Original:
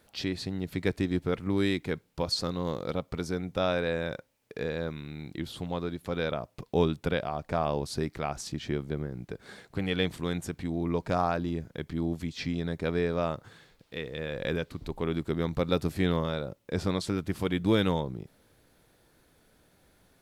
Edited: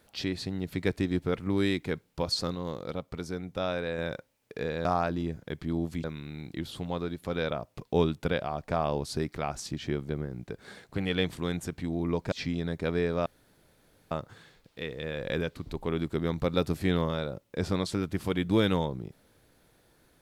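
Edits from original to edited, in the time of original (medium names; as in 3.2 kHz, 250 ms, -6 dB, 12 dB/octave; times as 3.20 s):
2.55–3.98 s: gain -3.5 dB
11.13–12.32 s: move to 4.85 s
13.26 s: insert room tone 0.85 s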